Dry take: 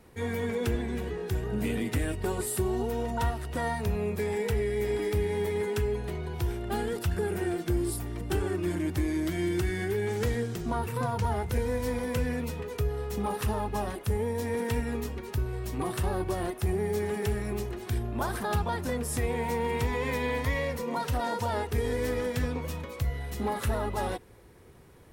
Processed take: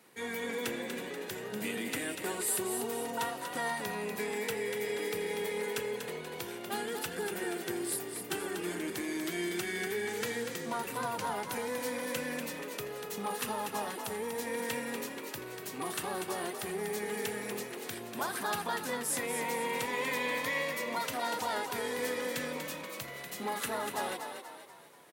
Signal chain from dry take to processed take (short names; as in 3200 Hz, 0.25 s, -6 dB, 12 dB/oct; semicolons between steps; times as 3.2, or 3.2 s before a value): HPF 160 Hz 24 dB/oct; tilt shelf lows -5.5 dB; notch 5400 Hz, Q 22; on a send: frequency-shifting echo 0.241 s, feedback 46%, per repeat +39 Hz, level -7 dB; on the sum: gain -3 dB